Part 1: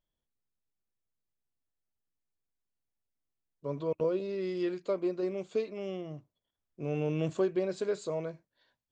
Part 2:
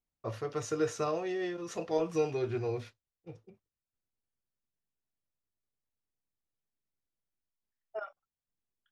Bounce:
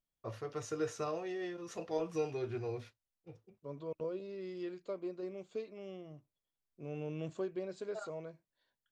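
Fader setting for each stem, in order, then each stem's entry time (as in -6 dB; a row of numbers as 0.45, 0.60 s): -9.5, -5.5 dB; 0.00, 0.00 s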